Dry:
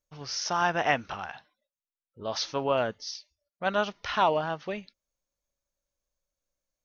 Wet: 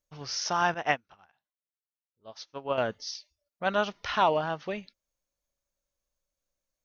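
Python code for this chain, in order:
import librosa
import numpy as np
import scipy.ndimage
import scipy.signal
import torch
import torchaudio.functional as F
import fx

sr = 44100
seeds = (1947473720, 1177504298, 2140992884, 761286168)

y = fx.upward_expand(x, sr, threshold_db=-41.0, expansion=2.5, at=(0.74, 2.78))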